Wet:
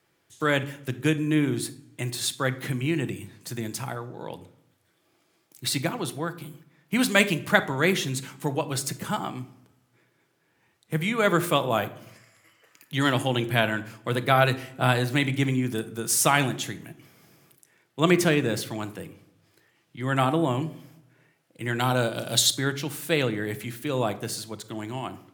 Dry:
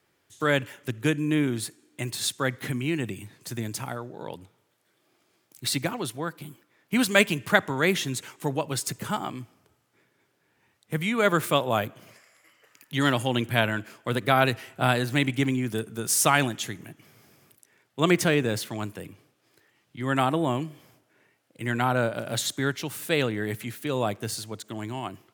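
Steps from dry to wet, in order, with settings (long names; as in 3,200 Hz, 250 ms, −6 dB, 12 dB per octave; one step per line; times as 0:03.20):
0:21.79–0:22.57: high shelf with overshoot 2,700 Hz +7 dB, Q 1.5
rectangular room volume 1,000 cubic metres, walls furnished, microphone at 0.71 metres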